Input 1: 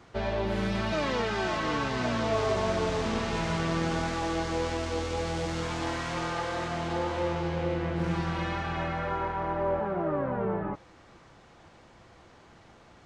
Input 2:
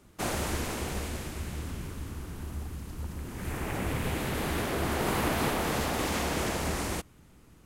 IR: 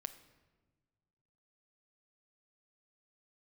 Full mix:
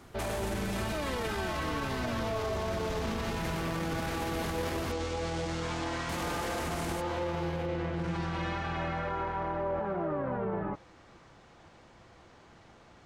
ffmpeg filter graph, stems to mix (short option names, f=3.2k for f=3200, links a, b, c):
-filter_complex "[0:a]volume=-1.5dB[a];[1:a]acompressor=threshold=-33dB:ratio=6,volume=1dB,asplit=3[b][c][d];[b]atrim=end=4.92,asetpts=PTS-STARTPTS,afade=t=out:st=4.916:d=0.004:c=hsin[e];[c]atrim=start=4.92:end=6.09,asetpts=PTS-STARTPTS,volume=0[f];[d]atrim=start=6.09,asetpts=PTS-STARTPTS,afade=t=in:d=0.004:c=hsin[g];[e][f][g]concat=n=3:v=0:a=1[h];[a][h]amix=inputs=2:normalize=0,alimiter=level_in=1dB:limit=-24dB:level=0:latency=1:release=19,volume=-1dB"